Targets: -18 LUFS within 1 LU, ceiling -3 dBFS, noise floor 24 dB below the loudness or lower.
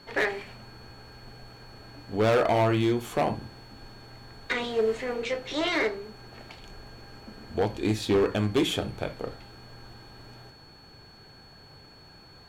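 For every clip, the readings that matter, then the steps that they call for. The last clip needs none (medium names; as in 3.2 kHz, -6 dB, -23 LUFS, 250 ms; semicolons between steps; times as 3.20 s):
clipped samples 1.1%; clipping level -18.0 dBFS; steady tone 4.4 kHz; tone level -53 dBFS; loudness -27.5 LUFS; peak level -18.0 dBFS; loudness target -18.0 LUFS
-> clip repair -18 dBFS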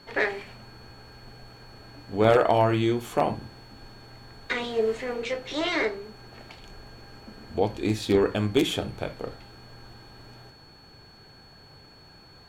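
clipped samples 0.0%; steady tone 4.4 kHz; tone level -53 dBFS
-> band-stop 4.4 kHz, Q 30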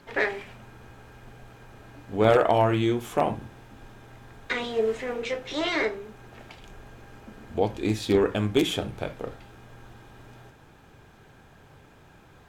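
steady tone not found; loudness -26.0 LUFS; peak level -9.0 dBFS; loudness target -18.0 LUFS
-> trim +8 dB; peak limiter -3 dBFS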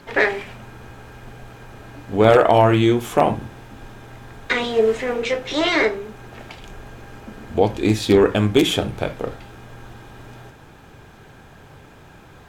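loudness -18.5 LUFS; peak level -3.0 dBFS; noise floor -46 dBFS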